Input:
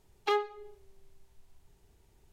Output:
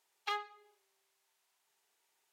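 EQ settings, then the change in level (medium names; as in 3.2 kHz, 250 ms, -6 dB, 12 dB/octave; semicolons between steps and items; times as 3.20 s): high-pass 1 kHz 12 dB/octave; -3.0 dB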